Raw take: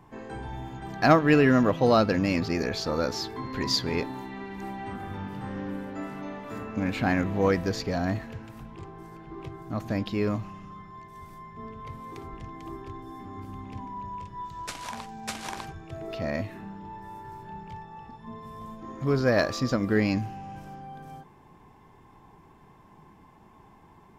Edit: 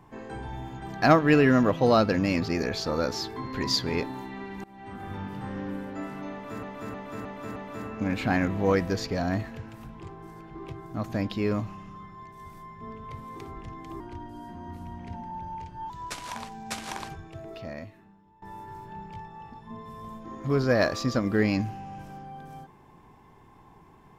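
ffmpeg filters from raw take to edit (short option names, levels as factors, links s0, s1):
-filter_complex "[0:a]asplit=9[s0][s1][s2][s3][s4][s5][s6][s7][s8];[s0]atrim=end=4.64,asetpts=PTS-STARTPTS,afade=t=out:st=4.636:d=0.004:c=hsin:silence=0.0668344[s9];[s1]atrim=start=4.64:end=6.632,asetpts=PTS-STARTPTS,afade=t=in:d=0.48:silence=0.0668344[s10];[s2]atrim=start=6.318:end=6.632[s11];[s3]atrim=start=6.318:end=6.632[s12];[s4]atrim=start=6.318:end=6.632[s13];[s5]atrim=start=6.318:end=12.764[s14];[s6]atrim=start=12.76:end=14.47,asetpts=PTS-STARTPTS,asetrate=39690,aresample=44100[s15];[s7]atrim=start=14.466:end=16.99,asetpts=PTS-STARTPTS,afade=t=out:st=1.284:d=1.24:c=qua:silence=0.105925[s16];[s8]atrim=start=16.99,asetpts=PTS-STARTPTS,afade=t=in:d=0.004:c=hsin:silence=0.105925[s17];[s9][s10]concat=n=2:v=0:a=1[s18];[s18][s11]acrossfade=d=0.004:c1=hsin:c2=hsin[s19];[s19][s12]acrossfade=d=0.004:c1=hsin:c2=hsin[s20];[s20][s13]acrossfade=d=0.004:c1=hsin:c2=hsin[s21];[s21][s14]acrossfade=d=0.004:c1=hsin:c2=hsin[s22];[s22][s15]acrossfade=d=0.004:c1=hsin:c2=hsin[s23];[s16][s17]concat=n=2:v=0:a=1[s24];[s23][s24]acrossfade=d=0.004:c1=hsin:c2=hsin"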